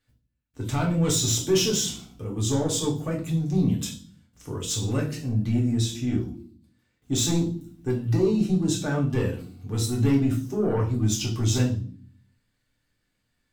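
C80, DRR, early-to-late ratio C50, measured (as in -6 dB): 15.5 dB, -2.0 dB, 9.5 dB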